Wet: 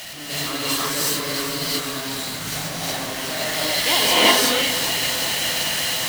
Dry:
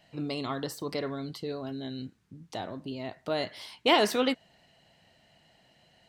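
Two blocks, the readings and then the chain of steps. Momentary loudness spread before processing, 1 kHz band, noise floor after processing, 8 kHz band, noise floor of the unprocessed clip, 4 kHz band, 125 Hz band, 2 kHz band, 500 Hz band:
15 LU, +8.5 dB, −31 dBFS, +24.5 dB, −66 dBFS, +16.5 dB, +8.0 dB, +14.5 dB, +5.0 dB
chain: converter with a step at zero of −24 dBFS
tilt shelving filter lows −6.5 dB, about 1,100 Hz
delay that swaps between a low-pass and a high-pass 195 ms, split 1,600 Hz, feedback 85%, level −8.5 dB
reverb whose tail is shaped and stops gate 400 ms rising, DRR −7.5 dB
expander for the loud parts 1.5 to 1, over −24 dBFS
level −2 dB

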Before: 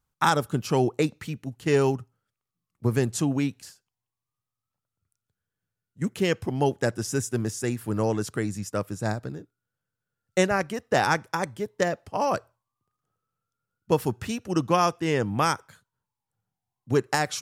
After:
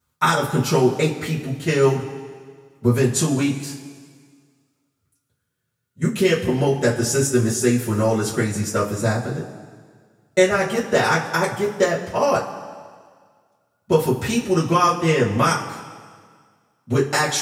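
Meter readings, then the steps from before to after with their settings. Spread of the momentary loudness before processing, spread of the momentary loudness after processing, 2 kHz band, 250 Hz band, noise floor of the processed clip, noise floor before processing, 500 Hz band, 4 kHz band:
9 LU, 11 LU, +6.5 dB, +6.0 dB, −74 dBFS, below −85 dBFS, +7.0 dB, +7.0 dB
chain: high-pass filter 91 Hz
downward compressor 3 to 1, threshold −24 dBFS, peak gain reduction 7 dB
coupled-rooms reverb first 0.21 s, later 1.8 s, from −18 dB, DRR −10 dB

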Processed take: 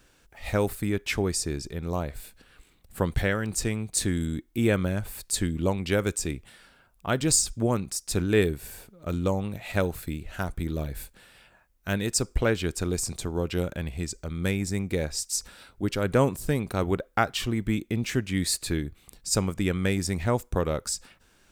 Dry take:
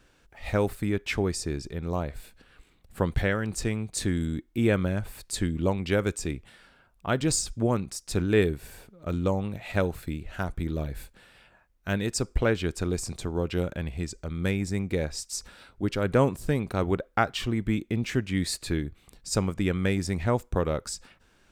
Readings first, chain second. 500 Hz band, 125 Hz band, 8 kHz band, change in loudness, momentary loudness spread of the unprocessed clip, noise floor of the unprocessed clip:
0.0 dB, 0.0 dB, +5.5 dB, +1.0 dB, 10 LU, −63 dBFS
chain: high-shelf EQ 6,300 Hz +9.5 dB

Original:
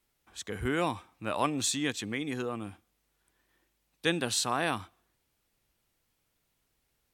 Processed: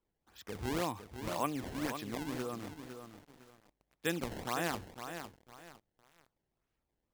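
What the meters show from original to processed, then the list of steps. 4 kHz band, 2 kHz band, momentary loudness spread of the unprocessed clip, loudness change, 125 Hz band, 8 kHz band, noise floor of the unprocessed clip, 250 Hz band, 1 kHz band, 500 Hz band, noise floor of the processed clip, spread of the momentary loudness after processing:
−10.5 dB, −7.0 dB, 12 LU, −7.0 dB, −4.0 dB, −12.0 dB, −77 dBFS, −5.0 dB, −5.0 dB, −5.0 dB, below −85 dBFS, 19 LU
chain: low-pass filter 3,300 Hz 12 dB per octave
sample-and-hold swept by an LFO 21×, swing 160% 1.9 Hz
feedback echo at a low word length 506 ms, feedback 35%, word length 8 bits, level −8 dB
level −5.5 dB

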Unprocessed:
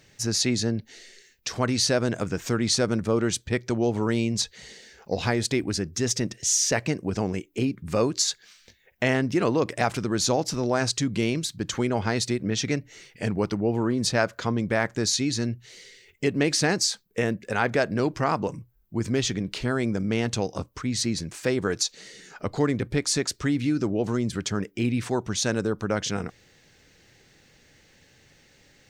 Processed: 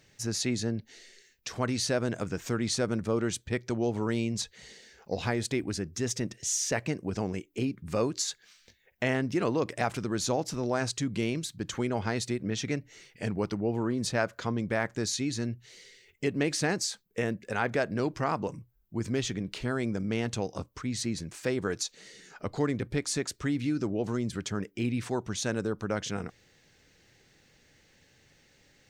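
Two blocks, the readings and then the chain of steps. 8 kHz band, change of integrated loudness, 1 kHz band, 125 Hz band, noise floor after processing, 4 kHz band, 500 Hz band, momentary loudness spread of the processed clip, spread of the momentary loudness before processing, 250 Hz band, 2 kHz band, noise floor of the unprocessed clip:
−7.0 dB, −5.5 dB, −5.0 dB, −5.0 dB, −65 dBFS, −8.0 dB, −5.0 dB, 8 LU, 7 LU, −5.0 dB, −5.0 dB, −60 dBFS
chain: dynamic equaliser 4,900 Hz, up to −4 dB, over −39 dBFS, Q 1.6
level −5 dB

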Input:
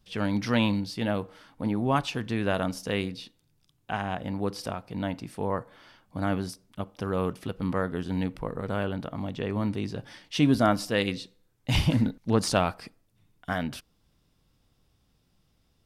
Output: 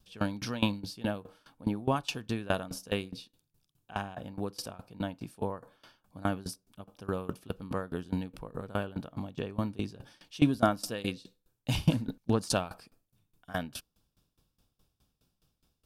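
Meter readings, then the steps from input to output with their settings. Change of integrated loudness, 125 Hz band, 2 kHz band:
−5.0 dB, −5.0 dB, −6.0 dB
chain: high-shelf EQ 8,000 Hz +8 dB
notch filter 2,000 Hz, Q 5.2
tremolo with a ramp in dB decaying 4.8 Hz, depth 21 dB
level +1 dB

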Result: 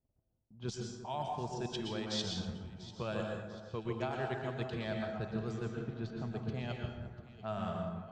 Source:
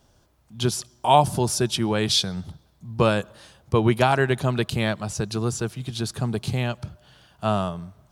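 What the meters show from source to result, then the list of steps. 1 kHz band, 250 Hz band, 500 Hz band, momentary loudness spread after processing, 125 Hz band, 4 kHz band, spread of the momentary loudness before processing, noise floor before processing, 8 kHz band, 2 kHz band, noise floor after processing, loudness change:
−17.5 dB, −13.5 dB, −14.5 dB, 7 LU, −14.5 dB, −16.0 dB, 12 LU, −61 dBFS, −20.5 dB, −15.5 dB, −79 dBFS, −16.0 dB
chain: Butterworth low-pass 7,700 Hz 48 dB per octave
noise gate −56 dBFS, range −20 dB
low-pass that shuts in the quiet parts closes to 510 Hz, open at −18 dBFS
transient designer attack +5 dB, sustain −10 dB
reversed playback
downward compressor 6 to 1, threshold −35 dBFS, peak gain reduction 24 dB
reversed playback
tuned comb filter 650 Hz, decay 0.44 s, mix 70%
on a send: delay that swaps between a low-pass and a high-pass 346 ms, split 1,900 Hz, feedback 64%, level −12 dB
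on the sum: dense smooth reverb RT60 0.85 s, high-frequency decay 0.65×, pre-delay 105 ms, DRR 1 dB
level +7 dB

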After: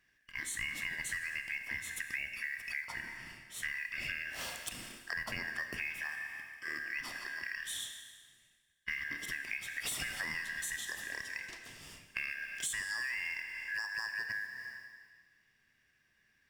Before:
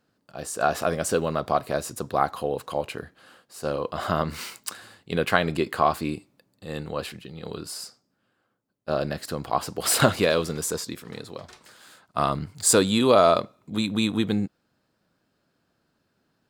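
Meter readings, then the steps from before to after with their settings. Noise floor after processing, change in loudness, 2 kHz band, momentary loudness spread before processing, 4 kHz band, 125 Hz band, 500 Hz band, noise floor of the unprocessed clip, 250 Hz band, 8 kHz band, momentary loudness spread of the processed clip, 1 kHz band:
−73 dBFS, −13.0 dB, −1.5 dB, 18 LU, −11.5 dB, −25.0 dB, −33.5 dB, −73 dBFS, −28.5 dB, −13.0 dB, 9 LU, −25.5 dB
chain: band-splitting scrambler in four parts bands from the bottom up 2143
brickwall limiter −12 dBFS, peak gain reduction 10 dB
noise that follows the level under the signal 26 dB
four-comb reverb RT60 1.5 s, combs from 25 ms, DRR 7.5 dB
downward compressor 6 to 1, threshold −34 dBFS, peak gain reduction 15 dB
level −2 dB

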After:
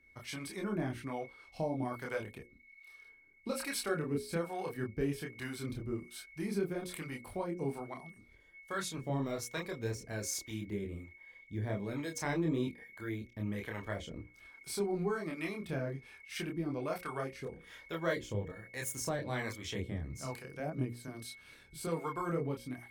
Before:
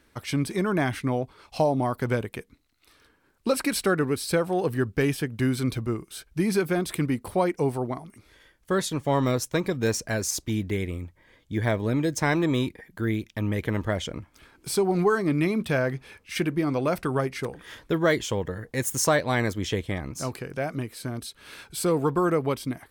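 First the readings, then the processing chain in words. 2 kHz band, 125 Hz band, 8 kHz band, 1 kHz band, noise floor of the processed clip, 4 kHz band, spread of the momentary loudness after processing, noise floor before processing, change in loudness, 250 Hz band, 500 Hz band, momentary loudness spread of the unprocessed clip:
−11.0 dB, −11.5 dB, −11.0 dB, −12.5 dB, −61 dBFS, −11.0 dB, 12 LU, −64 dBFS, −12.0 dB, −12.0 dB, −12.0 dB, 10 LU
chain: steady tone 2,200 Hz −46 dBFS
multi-voice chorus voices 6, 1 Hz, delay 27 ms, depth 3 ms
two-band tremolo in antiphase 1.2 Hz, depth 70%, crossover 520 Hz
mains-hum notches 60/120/180/240/300/360/420/480/540 Hz
level −5 dB

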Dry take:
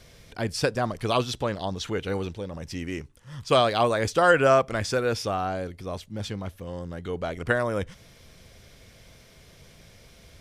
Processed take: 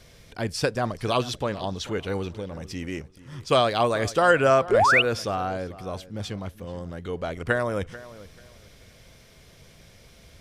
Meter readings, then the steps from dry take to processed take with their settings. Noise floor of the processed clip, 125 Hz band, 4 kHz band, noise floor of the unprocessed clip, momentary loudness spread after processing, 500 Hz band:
−53 dBFS, 0.0 dB, +1.5 dB, −53 dBFS, 18 LU, +0.5 dB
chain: feedback echo with a low-pass in the loop 438 ms, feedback 24%, low-pass 2,900 Hz, level −17 dB
sound drawn into the spectrogram rise, 0:04.71–0:05.02, 360–3,100 Hz −18 dBFS

